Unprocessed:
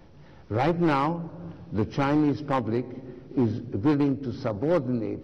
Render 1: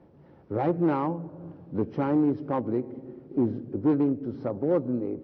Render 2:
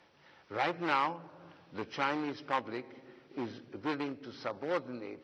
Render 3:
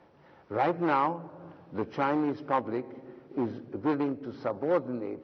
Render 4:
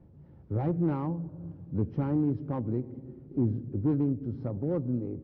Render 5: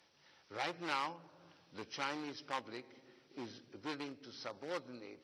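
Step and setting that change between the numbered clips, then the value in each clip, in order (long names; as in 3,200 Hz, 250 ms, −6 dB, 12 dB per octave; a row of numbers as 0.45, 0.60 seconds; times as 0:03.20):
resonant band-pass, frequency: 350, 2,500, 950, 110, 6,400 Hertz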